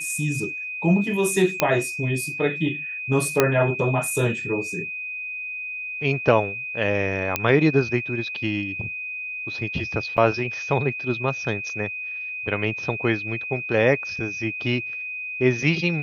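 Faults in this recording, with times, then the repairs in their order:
whine 2.5 kHz -29 dBFS
1.60 s: pop -3 dBFS
3.40 s: pop -2 dBFS
7.36 s: pop -5 dBFS
10.17–10.18 s: dropout 6.8 ms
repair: de-click; band-stop 2.5 kHz, Q 30; interpolate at 10.17 s, 6.8 ms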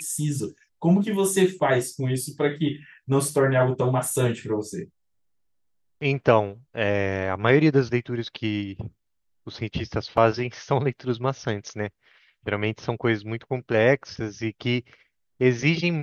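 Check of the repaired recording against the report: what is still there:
nothing left

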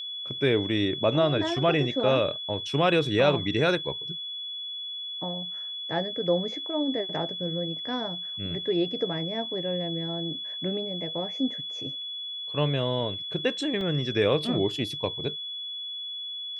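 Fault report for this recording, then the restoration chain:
whine 3.4 kHz -33 dBFS
13.81 s: dropout 2.1 ms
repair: band-stop 3.4 kHz, Q 30; interpolate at 13.81 s, 2.1 ms

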